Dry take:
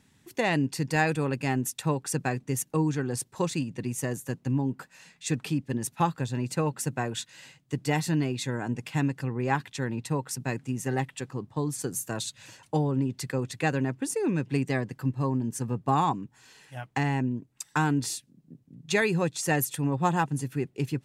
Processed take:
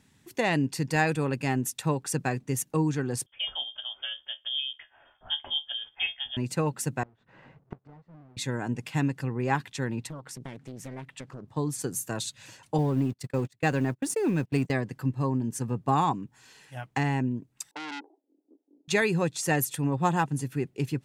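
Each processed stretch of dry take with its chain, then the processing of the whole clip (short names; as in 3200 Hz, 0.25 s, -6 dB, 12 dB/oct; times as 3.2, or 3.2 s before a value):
3.26–6.37 notch 1000 Hz, Q 6.7 + resonator 75 Hz, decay 0.17 s, mix 80% + inverted band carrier 3400 Hz
7.03–8.37 half-waves squared off + LPF 1100 Hz + flipped gate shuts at -27 dBFS, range -29 dB
10.07–11.48 high shelf 4400 Hz -6 dB + compressor, threshold -36 dBFS + Doppler distortion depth 0.86 ms
12.78–14.72 G.711 law mismatch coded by mu + gate -33 dBFS, range -30 dB
17.71–18.88 Chebyshev band-pass 290–870 Hz, order 4 + core saturation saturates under 2800 Hz
whole clip: dry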